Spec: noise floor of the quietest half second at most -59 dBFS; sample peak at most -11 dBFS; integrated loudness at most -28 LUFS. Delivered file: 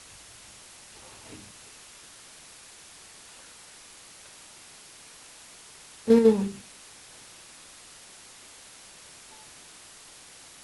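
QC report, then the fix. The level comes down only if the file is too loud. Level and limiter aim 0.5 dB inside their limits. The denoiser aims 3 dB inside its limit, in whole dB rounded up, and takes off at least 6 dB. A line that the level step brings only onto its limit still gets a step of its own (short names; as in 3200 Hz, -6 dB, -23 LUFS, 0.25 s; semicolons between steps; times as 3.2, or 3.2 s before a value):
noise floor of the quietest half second -50 dBFS: fail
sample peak -7.5 dBFS: fail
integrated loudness -22.5 LUFS: fail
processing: denoiser 6 dB, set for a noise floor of -50 dBFS; gain -6 dB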